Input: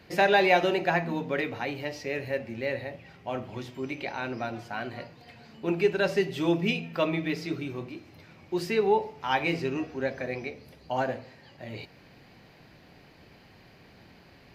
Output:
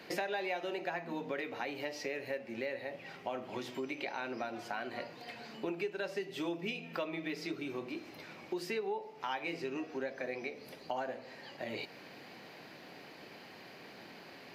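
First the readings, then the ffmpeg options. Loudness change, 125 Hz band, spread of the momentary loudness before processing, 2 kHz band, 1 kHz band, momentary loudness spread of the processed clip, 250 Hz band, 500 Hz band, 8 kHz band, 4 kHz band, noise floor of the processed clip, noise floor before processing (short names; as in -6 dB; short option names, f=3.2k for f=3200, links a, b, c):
-11.0 dB, -16.0 dB, 17 LU, -10.0 dB, -11.0 dB, 14 LU, -10.0 dB, -10.5 dB, -5.0 dB, -8.5 dB, -53 dBFS, -55 dBFS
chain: -af "highpass=260,acompressor=threshold=-41dB:ratio=5,volume=4.5dB"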